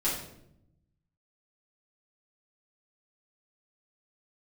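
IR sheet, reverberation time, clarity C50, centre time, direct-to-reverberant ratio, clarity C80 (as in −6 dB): 0.75 s, 3.5 dB, 44 ms, −9.5 dB, 7.0 dB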